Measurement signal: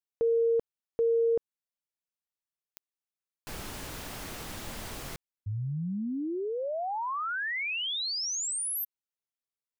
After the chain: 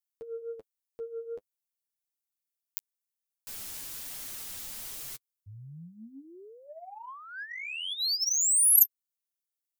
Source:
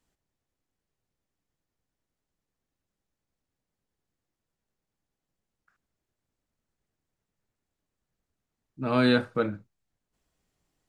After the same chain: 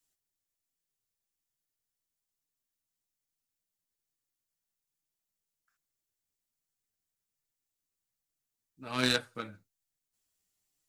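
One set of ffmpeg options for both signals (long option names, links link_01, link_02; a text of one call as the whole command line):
ffmpeg -i in.wav -af "flanger=delay=6.1:depth=5.8:regen=18:speed=1.2:shape=triangular,crystalizer=i=7.5:c=0,aeval=exprs='0.447*(cos(1*acos(clip(val(0)/0.447,-1,1)))-cos(1*PI/2))+0.112*(cos(3*acos(clip(val(0)/0.447,-1,1)))-cos(3*PI/2))':channel_layout=same" out.wav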